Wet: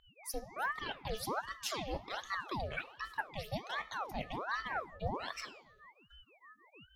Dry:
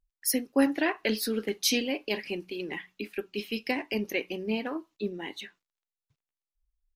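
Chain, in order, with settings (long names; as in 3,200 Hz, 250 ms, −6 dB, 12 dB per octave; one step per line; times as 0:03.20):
fade in at the beginning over 0.78 s
reversed playback
downward compressor 6 to 1, threshold −37 dBFS, peak gain reduction 16 dB
reversed playback
steady tone 1,500 Hz −57 dBFS
all-pass phaser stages 8, 3.2 Hz, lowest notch 640–2,600 Hz
on a send at −14.5 dB: convolution reverb RT60 1.1 s, pre-delay 3 ms
on the sum: ring modulator whose carrier an LFO sweeps 890 Hz, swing 75%, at 1.3 Hz
level +5 dB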